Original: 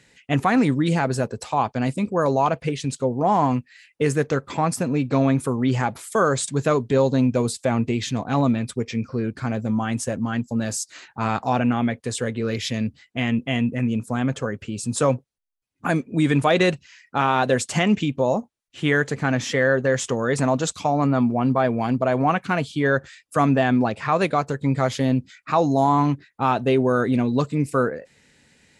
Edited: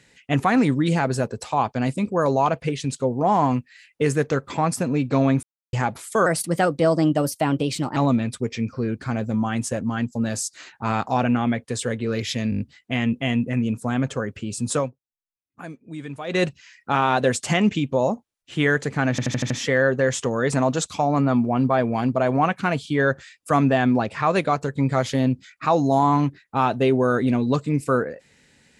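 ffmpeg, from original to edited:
-filter_complex "[0:a]asplit=17[a][b][c][d][e][f][g][h][i][j][k][l][m][n][o][p][q];[a]atrim=end=5.43,asetpts=PTS-STARTPTS,afade=t=out:st=5.426:d=0.004:c=hsin[r];[b]atrim=start=5.43:end=5.73,asetpts=PTS-STARTPTS,volume=0[s];[c]atrim=start=5.73:end=6.264,asetpts=PTS-STARTPTS,afade=t=in:d=0.004:c=hsin[t];[d]atrim=start=6.26:end=8.32,asetpts=PTS-STARTPTS,asetrate=53361,aresample=44100,atrim=end_sample=75079,asetpts=PTS-STARTPTS[u];[e]atrim=start=8.316:end=12.882[v];[f]atrim=start=12.858:end=12.882[w];[g]atrim=start=12.858:end=12.882[x];[h]atrim=start=12.858:end=12.882[y];[i]atrim=start=12.858:end=12.882[z];[j]atrim=start=12.858:end=15.16,asetpts=PTS-STARTPTS,afade=t=out:st=2.122:d=0.18:silence=0.177828[aa];[k]atrim=start=15.16:end=16.52,asetpts=PTS-STARTPTS,volume=-15dB[ab];[l]atrim=start=16.52:end=19.442,asetpts=PTS-STARTPTS,afade=t=in:d=0.18:silence=0.177828[ac];[m]atrim=start=19.358:end=19.442[ad];[n]atrim=start=19.358:end=19.442[ae];[o]atrim=start=19.358:end=19.442[af];[p]atrim=start=19.358:end=19.442[ag];[q]atrim=start=19.358[ah];[r][s][t]concat=n=3:v=0:a=1[ai];[ai][u]acrossfade=d=0.004:c1=hsin:c2=hsin[aj];[aj][v]acrossfade=d=0.004:c1=hsin:c2=hsin[ak];[ak][w]acrossfade=d=0.004:c1=hsin:c2=hsin[al];[al][x]acrossfade=d=0.004:c1=hsin:c2=hsin[am];[am][y]acrossfade=d=0.004:c1=hsin:c2=hsin[an];[an][z]acrossfade=d=0.004:c1=hsin:c2=hsin[ao];[aa][ab][ac]concat=n=3:v=0:a=1[ap];[ao][ap]acrossfade=d=0.004:c1=hsin:c2=hsin[aq];[aq][ad]acrossfade=d=0.004:c1=hsin:c2=hsin[ar];[ar][ae]acrossfade=d=0.004:c1=hsin:c2=hsin[as];[as][af]acrossfade=d=0.004:c1=hsin:c2=hsin[at];[at][ag]acrossfade=d=0.004:c1=hsin:c2=hsin[au];[au][ah]acrossfade=d=0.004:c1=hsin:c2=hsin"

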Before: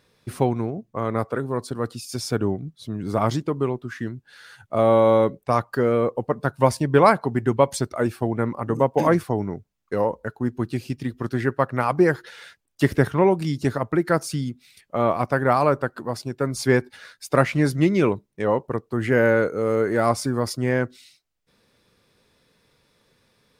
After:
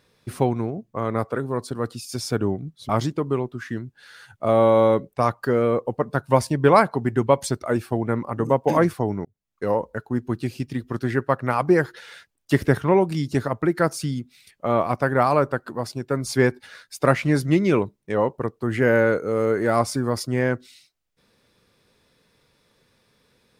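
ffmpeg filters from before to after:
-filter_complex "[0:a]asplit=3[a][b][c];[a]atrim=end=2.892[d];[b]atrim=start=3.188:end=9.55,asetpts=PTS-STARTPTS,afade=t=out:st=6.358:d=0.004:c=hsin[e];[c]atrim=start=9.55,asetpts=PTS-STARTPTS,afade=t=in:d=0.45[f];[e][f]concat=n=2:v=0:a=1[g];[d][g]acrossfade=d=0.004:c1=hsin:c2=hsin"

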